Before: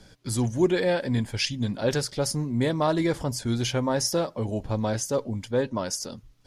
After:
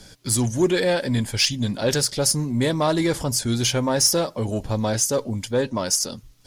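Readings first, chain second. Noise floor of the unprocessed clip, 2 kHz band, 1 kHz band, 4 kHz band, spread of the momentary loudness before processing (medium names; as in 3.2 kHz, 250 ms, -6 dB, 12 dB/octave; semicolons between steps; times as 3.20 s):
-55 dBFS, +4.5 dB, +3.0 dB, +8.0 dB, 5 LU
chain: treble shelf 4.2 kHz +10.5 dB; in parallel at -4 dB: saturation -23.5 dBFS, distortion -10 dB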